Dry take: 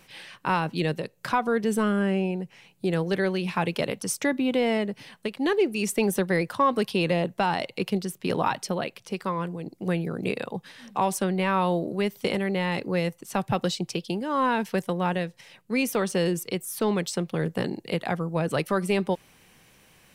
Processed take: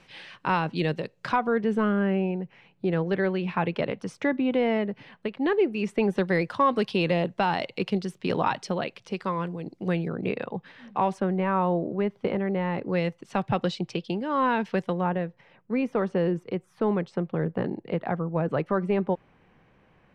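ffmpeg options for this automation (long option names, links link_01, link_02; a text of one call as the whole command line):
ffmpeg -i in.wav -af "asetnsamples=nb_out_samples=441:pad=0,asendcmd='1.36 lowpass f 2400;6.18 lowpass f 4700;10.08 lowpass f 2500;11.2 lowpass f 1500;12.89 lowpass f 3400;15.01 lowpass f 1500',lowpass=4600" out.wav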